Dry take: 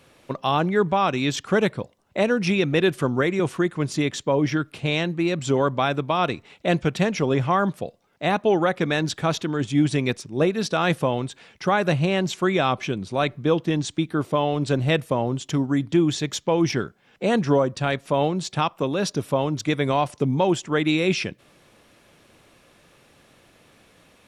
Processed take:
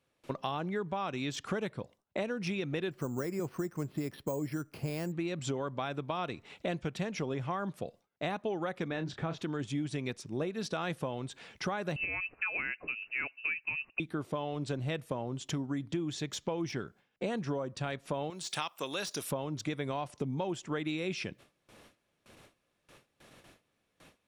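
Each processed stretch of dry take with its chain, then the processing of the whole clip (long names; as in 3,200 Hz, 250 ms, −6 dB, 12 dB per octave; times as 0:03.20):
0:02.91–0:05.12: low-pass filter 1,500 Hz 6 dB per octave + bad sample-rate conversion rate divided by 6×, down filtered, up hold
0:08.88–0:09.38: head-to-tape spacing loss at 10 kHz 21 dB + double-tracking delay 30 ms −10 dB
0:11.96–0:14.00: voice inversion scrambler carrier 2,800 Hz + expander for the loud parts, over −35 dBFS
0:18.30–0:19.31: spectral tilt +4.5 dB per octave + one half of a high-frequency compander decoder only
whole clip: de-essing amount 55%; noise gate with hold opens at −44 dBFS; downward compressor 5 to 1, threshold −31 dBFS; level −2 dB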